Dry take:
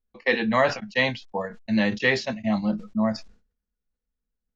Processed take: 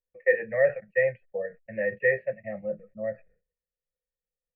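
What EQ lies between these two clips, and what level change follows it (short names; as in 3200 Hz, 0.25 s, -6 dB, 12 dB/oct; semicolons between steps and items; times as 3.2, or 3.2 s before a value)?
vocal tract filter e; bell 150 Hz +12 dB 0.82 oct; fixed phaser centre 970 Hz, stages 6; +5.5 dB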